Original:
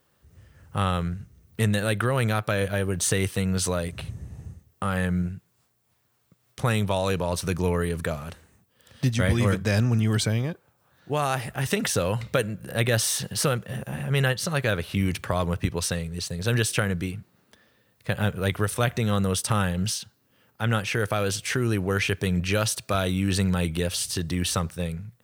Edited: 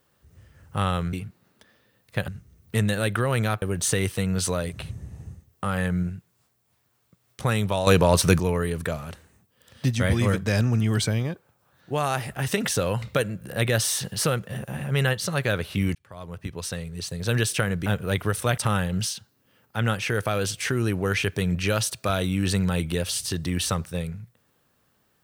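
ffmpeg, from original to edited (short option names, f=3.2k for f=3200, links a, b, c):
-filter_complex "[0:a]asplit=9[a][b][c][d][e][f][g][h][i];[a]atrim=end=1.132[j];[b]atrim=start=17.048:end=18.202[k];[c]atrim=start=1.128:end=2.472[l];[d]atrim=start=2.808:end=7.062[m];[e]atrim=start=7.058:end=7.592,asetpts=PTS-STARTPTS,volume=8.5dB[n];[f]atrim=start=7.588:end=15.14,asetpts=PTS-STARTPTS,afade=t=out:st=7.548:d=0.004:c=hsin[o];[g]atrim=start=15.14:end=17.052,asetpts=PTS-STARTPTS,afade=t=in:d=1.29[p];[h]atrim=start=18.198:end=18.922[q];[i]atrim=start=19.428[r];[j][k]acrossfade=d=0.004:c1=hsin:c2=hsin[s];[s][l]acrossfade=d=0.004:c1=hsin:c2=hsin[t];[t][m]acrossfade=d=0.004:c1=hsin:c2=hsin[u];[u][n]acrossfade=d=0.004:c1=hsin:c2=hsin[v];[o][p]concat=n=2:v=0:a=1[w];[v][w]acrossfade=d=0.004:c1=hsin:c2=hsin[x];[x][q]acrossfade=d=0.004:c1=hsin:c2=hsin[y];[y][r]acrossfade=d=0.004:c1=hsin:c2=hsin"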